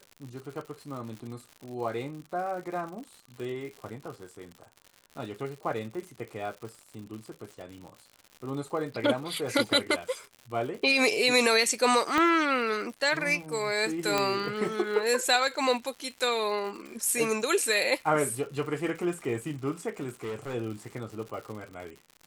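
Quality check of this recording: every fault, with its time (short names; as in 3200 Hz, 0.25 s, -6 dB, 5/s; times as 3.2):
crackle 130/s -38 dBFS
12.18 pop -13 dBFS
14.18 pop -11 dBFS
20.23–20.55 clipped -31.5 dBFS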